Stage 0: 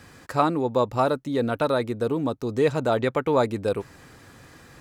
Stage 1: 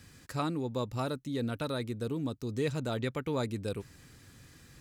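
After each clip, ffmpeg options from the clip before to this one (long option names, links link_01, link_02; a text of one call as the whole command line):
ffmpeg -i in.wav -af "equalizer=frequency=780:width=0.48:gain=-13,volume=-2.5dB" out.wav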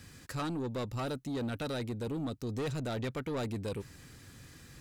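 ffmpeg -i in.wav -af "asoftclip=type=tanh:threshold=-33.5dB,volume=2.5dB" out.wav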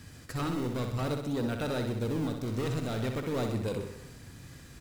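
ffmpeg -i in.wav -filter_complex "[0:a]asplit=2[link_01][link_02];[link_02]acrusher=samples=30:mix=1:aa=0.000001:lfo=1:lforange=48:lforate=0.47,volume=-6.5dB[link_03];[link_01][link_03]amix=inputs=2:normalize=0,aecho=1:1:63|126|189|252|315|378|441|504:0.473|0.274|0.159|0.0923|0.0535|0.0311|0.018|0.0104" out.wav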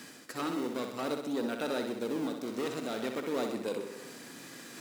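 ffmpeg -i in.wav -af "highpass=frequency=230:width=0.5412,highpass=frequency=230:width=1.3066,areverse,acompressor=mode=upward:threshold=-39dB:ratio=2.5,areverse" out.wav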